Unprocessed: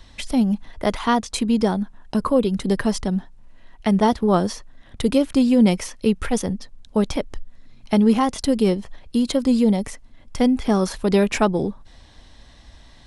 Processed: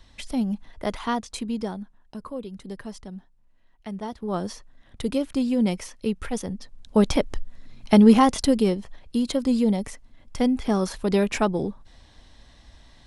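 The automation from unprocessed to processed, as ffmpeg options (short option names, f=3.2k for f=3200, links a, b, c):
-af "volume=12dB,afade=t=out:st=1.02:d=1.14:silence=0.334965,afade=t=in:st=4.12:d=0.4:silence=0.354813,afade=t=in:st=6.5:d=0.62:silence=0.334965,afade=t=out:st=8.3:d=0.4:silence=0.473151"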